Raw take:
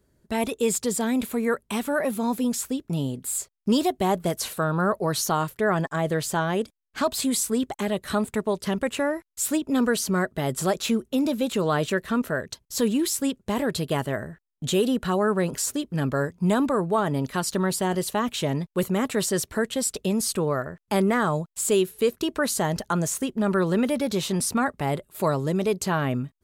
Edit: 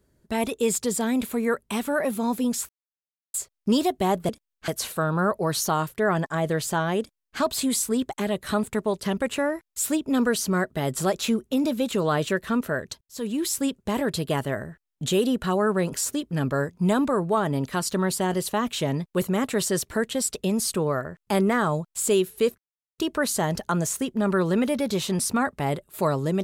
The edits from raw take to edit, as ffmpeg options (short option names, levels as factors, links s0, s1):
-filter_complex "[0:a]asplit=7[s0][s1][s2][s3][s4][s5][s6];[s0]atrim=end=2.69,asetpts=PTS-STARTPTS,afade=t=out:st=2.686:d=0.004:c=hsin[s7];[s1]atrim=start=2.69:end=3.34,asetpts=PTS-STARTPTS,volume=0[s8];[s2]atrim=start=3.34:end=4.292,asetpts=PTS-STARTPTS,afade=t=in:d=0.004:c=hsin[s9];[s3]atrim=start=6.608:end=7.002[s10];[s4]atrim=start=4.288:end=12.62,asetpts=PTS-STARTPTS,afade=t=out:st=8.328:d=0.004:c=hsin[s11];[s5]atrim=start=12.62:end=22.19,asetpts=PTS-STARTPTS,afade=t=in:d=0.53,afade=t=out:st=9.566:d=0.004:c=hsin,apad=pad_dur=0.4[s12];[s6]atrim=start=22.19,asetpts=PTS-STARTPTS,afade=t=in:d=0.004:c=hsin[s13];[s7][s8][s9]concat=n=3:v=0:a=1[s14];[s14][s10]acrossfade=d=0.004:c1=hsin:c2=hsin[s15];[s11][s12][s13]concat=n=3:v=0:a=1[s16];[s15][s16]acrossfade=d=0.004:c1=hsin:c2=hsin"